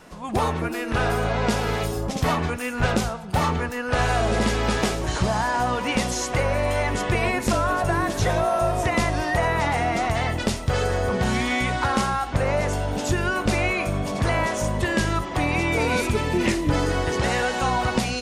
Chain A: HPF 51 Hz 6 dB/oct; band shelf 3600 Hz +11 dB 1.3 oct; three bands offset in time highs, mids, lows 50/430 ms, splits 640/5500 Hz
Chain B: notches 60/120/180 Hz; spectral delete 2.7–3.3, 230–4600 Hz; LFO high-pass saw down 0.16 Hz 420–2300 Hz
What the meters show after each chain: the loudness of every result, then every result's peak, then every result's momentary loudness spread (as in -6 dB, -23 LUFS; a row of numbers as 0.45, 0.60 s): -22.0, -23.0 LUFS; -5.5, -6.5 dBFS; 5, 8 LU